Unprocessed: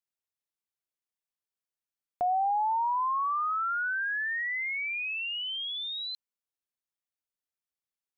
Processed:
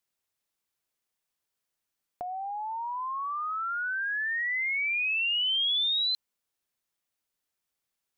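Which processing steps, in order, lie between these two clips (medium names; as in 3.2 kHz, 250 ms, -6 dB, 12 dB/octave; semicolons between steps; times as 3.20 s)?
compressor with a negative ratio -35 dBFS, ratio -1; trim +4.5 dB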